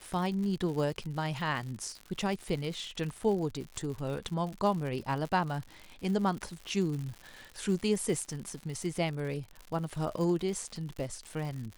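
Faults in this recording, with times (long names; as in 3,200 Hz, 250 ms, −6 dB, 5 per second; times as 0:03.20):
surface crackle 120 per second −37 dBFS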